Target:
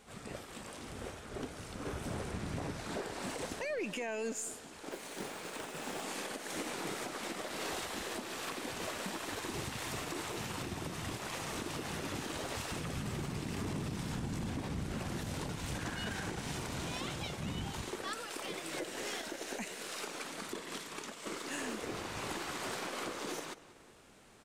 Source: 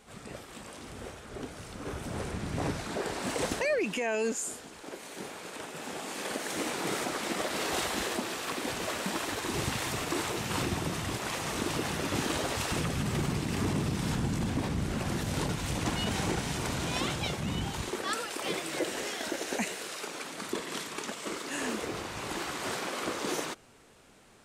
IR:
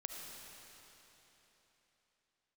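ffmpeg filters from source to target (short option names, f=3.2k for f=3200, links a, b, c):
-filter_complex "[0:a]asettb=1/sr,asplit=3[a][b][c];[a]atrim=end=4.914[d];[b]atrim=start=4.91:end=6.03,asetpts=PTS-STARTPTS,afade=t=in:d=0.004:c=qsin,afade=t=out:st=1.116:d=0.004:c=qsin,acrusher=bits=4:mode=log:mix=0:aa=0.000001[e];[c]atrim=start=6.026[f];[d][e]acrossfade=d=0.004:c1=hsin:c2=qsin[g];[g][f]acrossfade=d=0.004:c1=qsin:c2=hsin,asettb=1/sr,asplit=3[h][i][j];[h]atrim=end=15.744[k];[i]atrim=start=15.74:end=16.3,asetpts=PTS-STARTPTS,afade=t=in:d=0.004:c=qsin,afade=t=out:st=0.556:d=0.004:c=qsin,equalizer=f=1.6k:w=5.7:g=12[l];[j]atrim=start=16.296[m];[k][l]acrossfade=d=0.004:c1=hsin:c2=qsin[n];[n][m]acrossfade=d=0.004:c1=qsin:c2=hsin,asplit=2[o][p];[p]adelay=187,lowpass=f=4.9k:p=1,volume=-19.5dB,asplit=2[q][r];[r]adelay=187,lowpass=f=4.9k:p=1,volume=0.43,asplit=2[s][t];[t]adelay=187,lowpass=f=4.9k:p=1,volume=0.43[u];[q][s][u]amix=inputs=3:normalize=0[v];[o][v]amix=inputs=2:normalize=0,alimiter=level_in=4dB:limit=-24dB:level=0:latency=1:release=437,volume=-4dB,aeval=exprs='0.0422*(cos(1*acos(clip(val(0)/0.0422,-1,1)))-cos(1*PI/2))+0.000944*(cos(6*acos(clip(val(0)/0.0422,-1,1)))-cos(6*PI/2))+0.000668*(cos(7*acos(clip(val(0)/0.0422,-1,1)))-cos(7*PI/2))':c=same,volume=-1dB"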